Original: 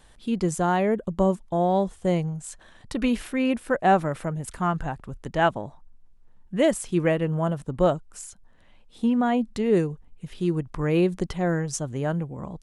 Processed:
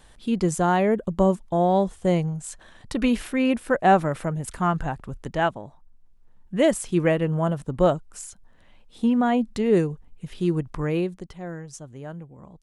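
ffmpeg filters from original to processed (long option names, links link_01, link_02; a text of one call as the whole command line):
ffmpeg -i in.wav -af "volume=8.5dB,afade=type=out:start_time=5.21:duration=0.37:silence=0.446684,afade=type=in:start_time=5.58:duration=1.11:silence=0.473151,afade=type=out:start_time=10.7:duration=0.49:silence=0.251189" out.wav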